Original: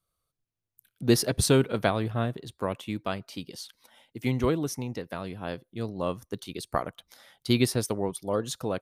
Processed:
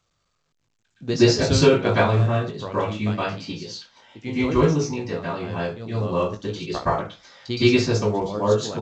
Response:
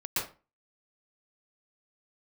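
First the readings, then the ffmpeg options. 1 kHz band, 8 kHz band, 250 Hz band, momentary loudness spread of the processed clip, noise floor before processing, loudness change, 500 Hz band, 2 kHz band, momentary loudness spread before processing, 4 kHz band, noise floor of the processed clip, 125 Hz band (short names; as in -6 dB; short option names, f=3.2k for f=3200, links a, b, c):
+8.0 dB, 0.0 dB, +6.0 dB, 16 LU, -85 dBFS, +7.0 dB, +8.0 dB, +8.0 dB, 16 LU, +6.0 dB, -72 dBFS, +7.5 dB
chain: -filter_complex "[0:a]aecho=1:1:19|66:0.531|0.15[a];[1:a]atrim=start_sample=2205,afade=t=out:st=0.33:d=0.01,atrim=end_sample=14994[b];[a][b]afir=irnorm=-1:irlink=0" -ar 16000 -c:a pcm_alaw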